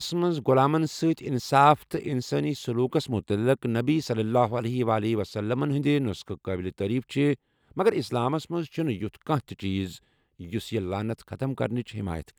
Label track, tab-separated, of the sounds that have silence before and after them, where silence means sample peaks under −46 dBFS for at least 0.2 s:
7.710000	9.980000	sound